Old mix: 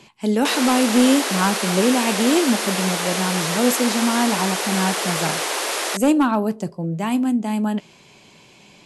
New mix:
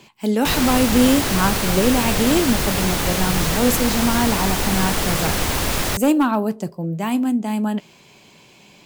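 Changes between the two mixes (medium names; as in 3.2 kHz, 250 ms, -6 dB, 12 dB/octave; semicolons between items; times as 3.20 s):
background: remove steep high-pass 360 Hz 36 dB/octave; master: remove brick-wall FIR low-pass 12 kHz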